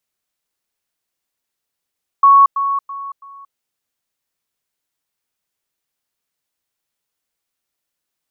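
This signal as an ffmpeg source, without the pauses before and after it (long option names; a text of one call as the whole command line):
ffmpeg -f lavfi -i "aevalsrc='pow(10,(-5-10*floor(t/0.33))/20)*sin(2*PI*1110*t)*clip(min(mod(t,0.33),0.23-mod(t,0.33))/0.005,0,1)':duration=1.32:sample_rate=44100" out.wav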